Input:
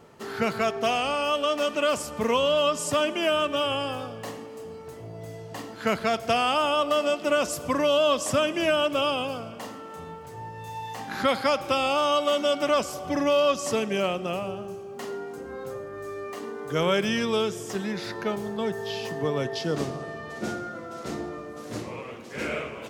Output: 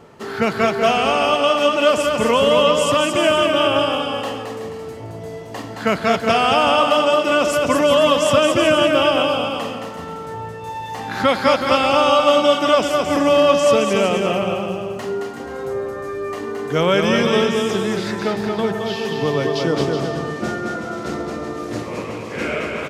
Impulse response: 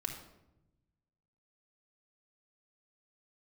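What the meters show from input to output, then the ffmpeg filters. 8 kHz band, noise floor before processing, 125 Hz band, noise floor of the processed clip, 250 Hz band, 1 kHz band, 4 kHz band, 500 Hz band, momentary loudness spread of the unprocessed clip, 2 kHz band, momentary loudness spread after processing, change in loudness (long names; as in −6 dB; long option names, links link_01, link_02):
+5.5 dB, −41 dBFS, +9.0 dB, −31 dBFS, +9.0 dB, +9.0 dB, +8.0 dB, +9.0 dB, 16 LU, +8.5 dB, 15 LU, +8.5 dB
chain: -af "highshelf=frequency=6500:gain=-6.5,aresample=32000,aresample=44100,aecho=1:1:220|374|481.8|557.3|610.1:0.631|0.398|0.251|0.158|0.1,volume=7dB"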